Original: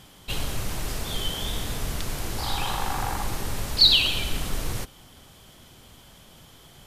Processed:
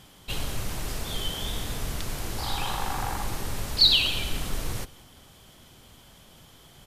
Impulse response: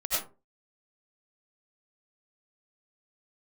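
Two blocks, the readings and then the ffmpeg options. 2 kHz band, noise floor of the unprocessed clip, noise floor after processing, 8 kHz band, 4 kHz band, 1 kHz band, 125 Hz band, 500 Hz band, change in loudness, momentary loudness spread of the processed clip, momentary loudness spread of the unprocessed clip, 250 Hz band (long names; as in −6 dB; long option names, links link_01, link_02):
−2.0 dB, −51 dBFS, −53 dBFS, −2.0 dB, −2.0 dB, −2.0 dB, −2.0 dB, −2.0 dB, −2.0 dB, 15 LU, 15 LU, −2.0 dB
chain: -af "aecho=1:1:174:0.0794,volume=-2dB"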